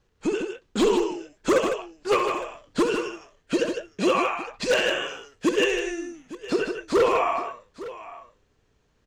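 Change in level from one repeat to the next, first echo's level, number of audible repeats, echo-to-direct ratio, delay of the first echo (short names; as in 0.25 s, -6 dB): no steady repeat, -9.5 dB, 3, -4.5 dB, 65 ms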